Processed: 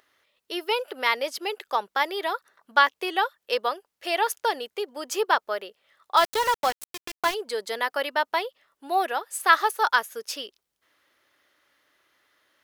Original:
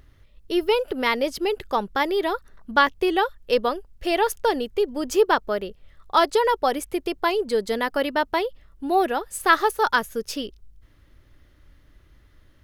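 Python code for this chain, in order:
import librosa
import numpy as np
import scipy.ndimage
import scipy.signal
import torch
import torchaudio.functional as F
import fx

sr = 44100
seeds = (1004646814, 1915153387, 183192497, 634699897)

y = scipy.signal.sosfilt(scipy.signal.butter(2, 660.0, 'highpass', fs=sr, output='sos'), x)
y = fx.sample_gate(y, sr, floor_db=-26.0, at=(6.16, 7.33), fade=0.02)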